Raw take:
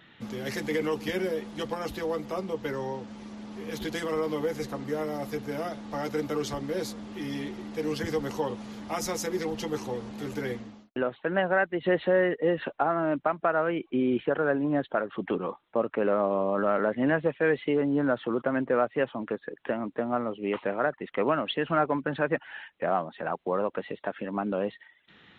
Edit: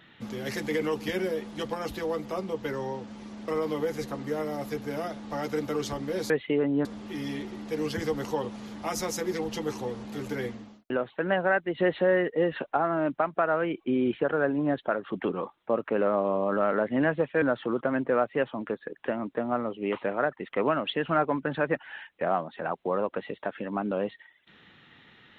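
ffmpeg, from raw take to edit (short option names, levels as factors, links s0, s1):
-filter_complex "[0:a]asplit=5[s0][s1][s2][s3][s4];[s0]atrim=end=3.482[s5];[s1]atrim=start=4.088:end=6.912[s6];[s2]atrim=start=17.478:end=18.032[s7];[s3]atrim=start=6.908:end=17.482[s8];[s4]atrim=start=18.028[s9];[s5][s6]acrossfade=d=0.004:c1=hsin:c2=hsin[s10];[s10][s7]acrossfade=d=0.004:c1=hsin:c2=hsin[s11];[s11][s8]acrossfade=d=0.004:c1=hsin:c2=hsin[s12];[s12][s9]acrossfade=d=0.004:c1=hsin:c2=hsin"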